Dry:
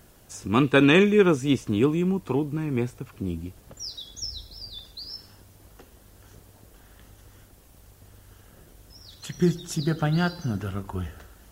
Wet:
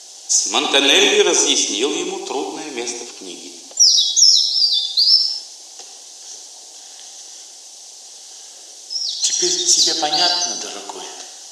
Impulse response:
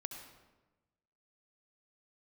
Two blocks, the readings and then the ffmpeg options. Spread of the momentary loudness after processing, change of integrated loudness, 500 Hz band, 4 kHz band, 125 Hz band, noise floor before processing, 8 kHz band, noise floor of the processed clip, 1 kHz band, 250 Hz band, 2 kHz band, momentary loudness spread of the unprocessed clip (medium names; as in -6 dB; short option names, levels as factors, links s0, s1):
21 LU, +10.5 dB, +3.5 dB, +22.0 dB, under -20 dB, -54 dBFS, +27.0 dB, -39 dBFS, +8.0 dB, -4.0 dB, +6.0 dB, 20 LU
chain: -filter_complex "[0:a]highpass=f=360:w=0.5412,highpass=f=360:w=1.3066,equalizer=f=770:t=q:w=4:g=10,equalizer=f=1300:t=q:w=4:g=-7,equalizer=f=2100:t=q:w=4:g=7,equalizer=f=6100:t=q:w=4:g=4,lowpass=f=6700:w=0.5412,lowpass=f=6700:w=1.3066,aexciter=amount=7.6:drive=8.6:freq=3300[s0];[1:a]atrim=start_sample=2205,afade=t=out:st=0.32:d=0.01,atrim=end_sample=14553[s1];[s0][s1]afir=irnorm=-1:irlink=0,alimiter=level_in=2.51:limit=0.891:release=50:level=0:latency=1,volume=0.891" -ar 48000 -c:a mp2 -b:a 192k